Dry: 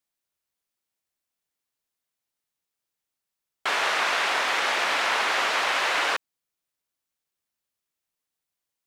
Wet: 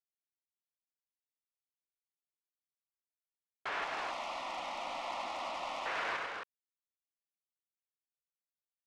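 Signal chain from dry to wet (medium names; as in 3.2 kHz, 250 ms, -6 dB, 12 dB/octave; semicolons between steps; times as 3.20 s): companding laws mixed up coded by A; low-pass 2.4 kHz 12 dB/octave; saturation -23.5 dBFS, distortion -14 dB; 3.84–5.86 s: static phaser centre 430 Hz, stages 6; loudspeakers at several distances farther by 33 m -6 dB, 78 m -9 dB, 92 m -6 dB; trim -8 dB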